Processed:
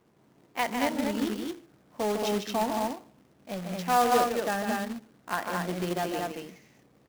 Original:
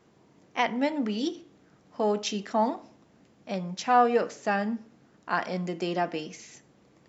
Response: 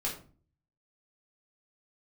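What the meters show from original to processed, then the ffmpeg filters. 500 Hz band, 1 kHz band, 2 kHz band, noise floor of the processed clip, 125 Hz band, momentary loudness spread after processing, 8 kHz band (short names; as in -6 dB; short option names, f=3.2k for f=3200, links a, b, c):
-1.0 dB, -1.0 dB, -0.5 dB, -63 dBFS, 0.0 dB, 15 LU, n/a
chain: -af "adynamicsmooth=sensitivity=4:basefreq=2.6k,aecho=1:1:151.6|224.5:0.501|0.708,acrusher=bits=2:mode=log:mix=0:aa=0.000001,volume=-3.5dB"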